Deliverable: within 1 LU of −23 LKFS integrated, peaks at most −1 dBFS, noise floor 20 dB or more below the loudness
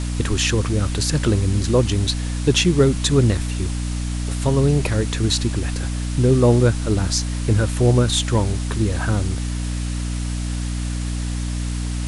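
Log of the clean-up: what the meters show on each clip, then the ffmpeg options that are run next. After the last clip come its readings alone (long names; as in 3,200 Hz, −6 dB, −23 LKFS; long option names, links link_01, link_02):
mains hum 60 Hz; hum harmonics up to 300 Hz; level of the hum −21 dBFS; background noise floor −25 dBFS; target noise floor −41 dBFS; integrated loudness −20.5 LKFS; sample peak −4.0 dBFS; target loudness −23.0 LKFS
→ -af "bandreject=frequency=60:width_type=h:width=4,bandreject=frequency=120:width_type=h:width=4,bandreject=frequency=180:width_type=h:width=4,bandreject=frequency=240:width_type=h:width=4,bandreject=frequency=300:width_type=h:width=4"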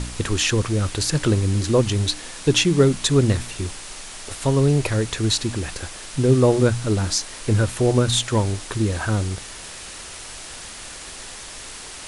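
mains hum none found; background noise floor −37 dBFS; target noise floor −41 dBFS
→ -af "afftdn=noise_reduction=6:noise_floor=-37"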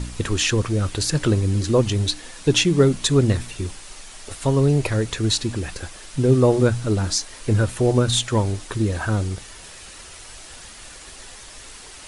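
background noise floor −41 dBFS; integrated loudness −20.5 LKFS; sample peak −4.0 dBFS; target loudness −23.0 LKFS
→ -af "volume=-2.5dB"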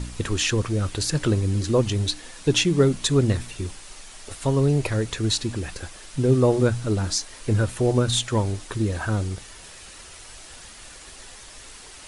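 integrated loudness −23.0 LKFS; sample peak −6.5 dBFS; background noise floor −44 dBFS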